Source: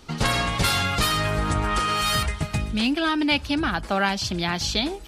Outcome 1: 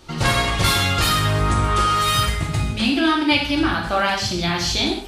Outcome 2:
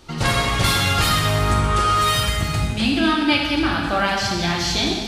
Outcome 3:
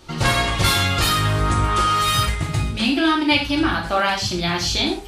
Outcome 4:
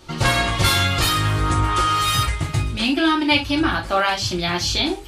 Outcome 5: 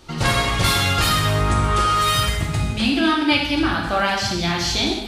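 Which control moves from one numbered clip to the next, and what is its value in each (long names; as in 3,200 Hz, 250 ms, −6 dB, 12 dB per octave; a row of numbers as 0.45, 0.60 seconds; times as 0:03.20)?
reverb whose tail is shaped and stops, gate: 220, 540, 150, 90, 330 milliseconds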